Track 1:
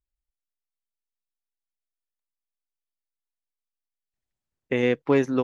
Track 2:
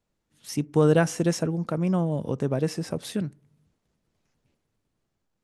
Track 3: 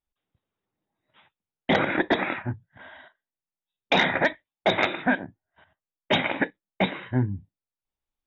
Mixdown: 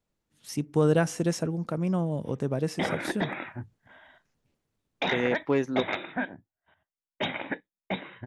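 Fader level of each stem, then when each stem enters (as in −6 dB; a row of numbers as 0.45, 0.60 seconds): −5.0, −3.0, −8.0 decibels; 0.40, 0.00, 1.10 seconds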